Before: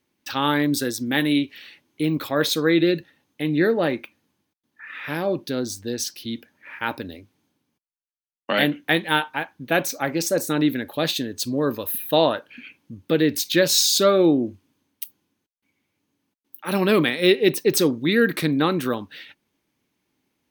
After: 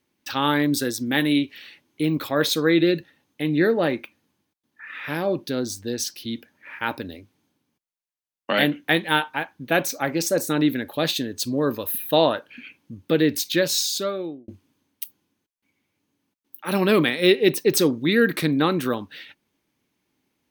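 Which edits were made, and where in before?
0:13.28–0:14.48: fade out

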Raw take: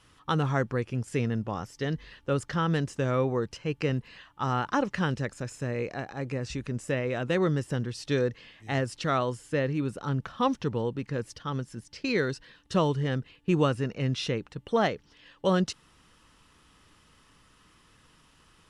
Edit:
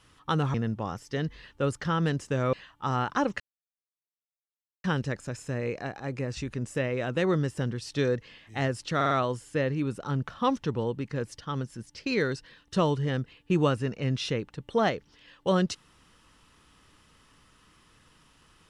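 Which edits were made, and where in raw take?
0:00.54–0:01.22: remove
0:03.21–0:04.10: remove
0:04.97: splice in silence 1.44 s
0:09.09: stutter 0.05 s, 4 plays

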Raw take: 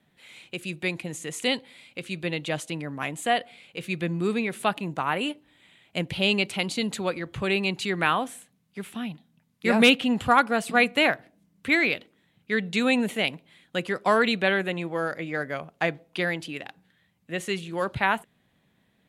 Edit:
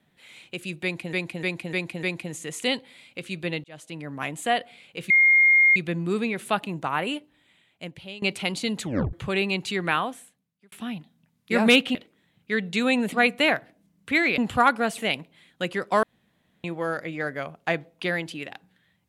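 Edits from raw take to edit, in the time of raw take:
0:00.83–0:01.13: repeat, 5 plays
0:02.44–0:02.97: fade in
0:03.90: insert tone 2,130 Hz −13.5 dBFS 0.66 s
0:05.15–0:06.36: fade out, to −22 dB
0:06.96: tape stop 0.31 s
0:07.98–0:08.86: fade out
0:10.09–0:10.69: swap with 0:11.95–0:13.12
0:14.17–0:14.78: fill with room tone

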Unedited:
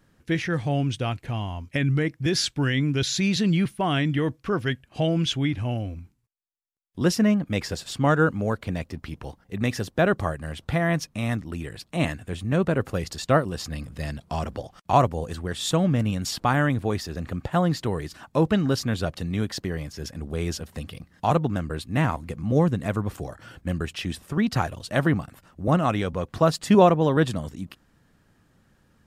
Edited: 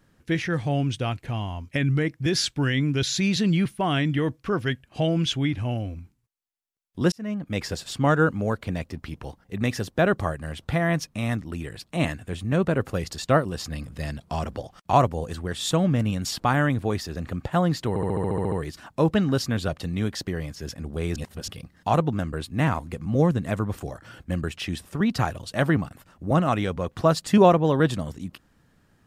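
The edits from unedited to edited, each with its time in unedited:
0:07.12–0:07.66: fade in
0:17.89: stutter 0.07 s, 10 plays
0:20.53–0:20.85: reverse

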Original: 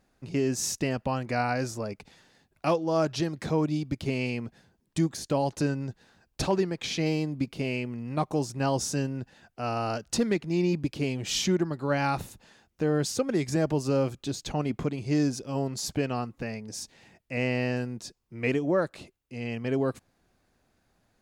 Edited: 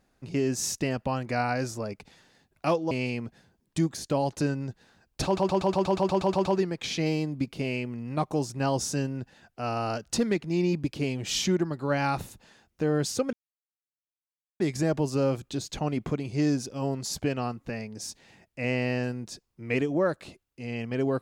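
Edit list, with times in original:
0:02.91–0:04.11: remove
0:06.45: stutter 0.12 s, 11 plays
0:13.33: splice in silence 1.27 s

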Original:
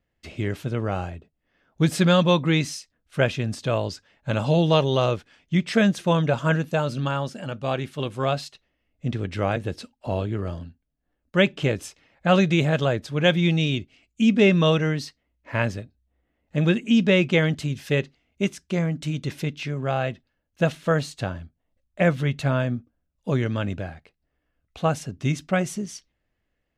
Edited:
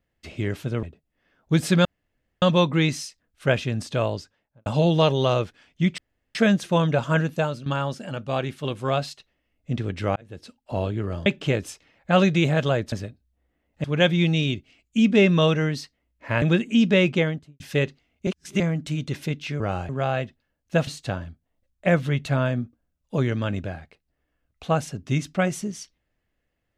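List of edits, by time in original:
0:00.83–0:01.12: move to 0:19.76
0:02.14: splice in room tone 0.57 s
0:03.73–0:04.38: fade out and dull
0:05.70: splice in room tone 0.37 s
0:06.76–0:07.01: fade out, to −14 dB
0:09.51–0:10.11: fade in
0:10.61–0:11.42: remove
0:15.66–0:16.58: move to 0:13.08
0:17.23–0:17.76: fade out and dull
0:18.43–0:18.76: reverse
0:20.74–0:21.01: remove

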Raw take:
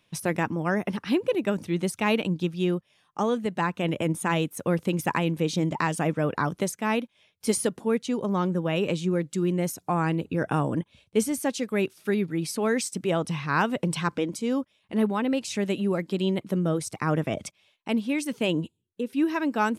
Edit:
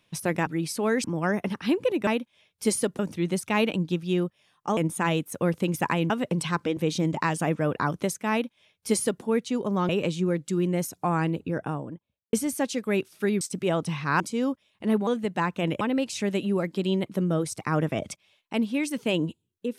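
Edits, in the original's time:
0:03.28–0:04.02: move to 0:15.16
0:06.89–0:07.81: duplicate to 0:01.50
0:08.47–0:08.74: remove
0:10.01–0:11.18: fade out and dull
0:12.26–0:12.83: move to 0:00.47
0:13.62–0:14.29: move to 0:05.35

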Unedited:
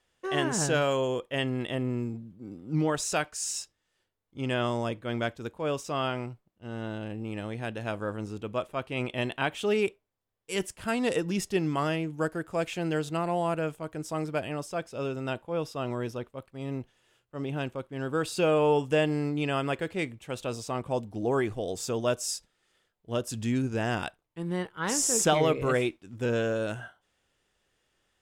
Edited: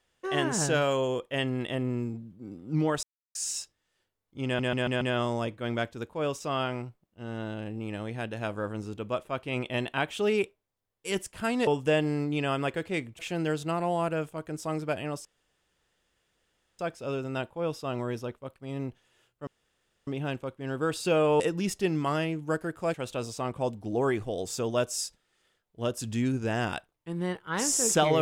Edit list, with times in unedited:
0:03.03–0:03.35: silence
0:04.45: stutter 0.14 s, 5 plays
0:11.11–0:12.65: swap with 0:18.72–0:20.24
0:14.71: splice in room tone 1.54 s
0:17.39: splice in room tone 0.60 s

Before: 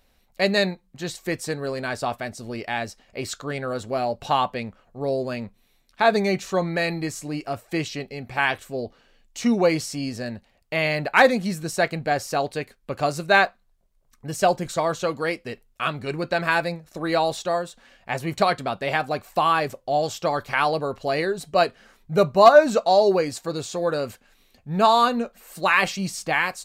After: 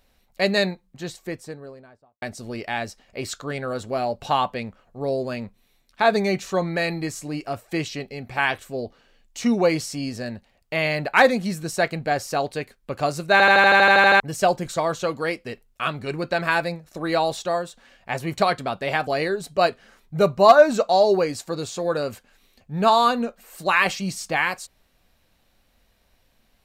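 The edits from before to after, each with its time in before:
0:00.67–0:02.22: fade out and dull
0:13.32: stutter in place 0.08 s, 11 plays
0:19.07–0:21.04: remove

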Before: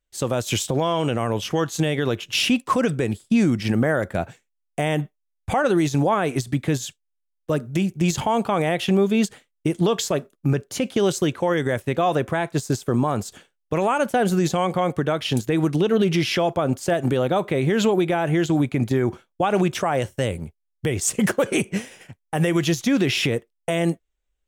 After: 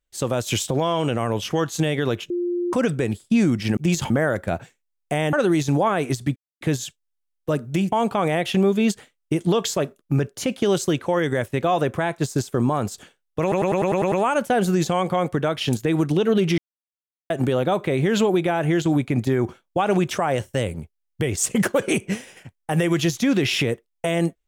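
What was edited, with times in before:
0:02.30–0:02.73: beep over 351 Hz −21 dBFS
0:05.00–0:05.59: remove
0:06.62: splice in silence 0.25 s
0:07.93–0:08.26: move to 0:03.77
0:13.76: stutter 0.10 s, 8 plays
0:16.22–0:16.94: silence

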